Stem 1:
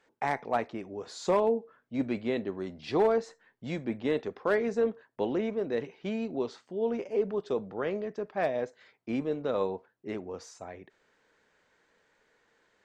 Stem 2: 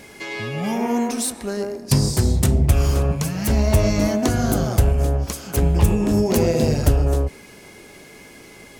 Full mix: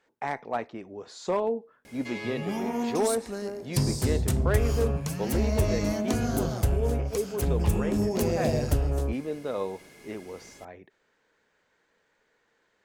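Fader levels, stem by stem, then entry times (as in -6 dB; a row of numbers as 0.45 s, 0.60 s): -1.5 dB, -8.5 dB; 0.00 s, 1.85 s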